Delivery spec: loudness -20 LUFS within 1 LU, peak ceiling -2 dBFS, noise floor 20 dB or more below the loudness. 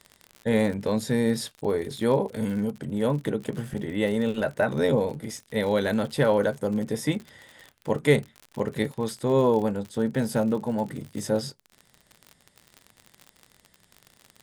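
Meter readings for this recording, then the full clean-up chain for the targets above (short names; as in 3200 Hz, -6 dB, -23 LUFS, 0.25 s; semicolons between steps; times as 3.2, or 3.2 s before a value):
ticks 55/s; loudness -26.5 LUFS; peak -6.5 dBFS; loudness target -20.0 LUFS
-> de-click; gain +6.5 dB; limiter -2 dBFS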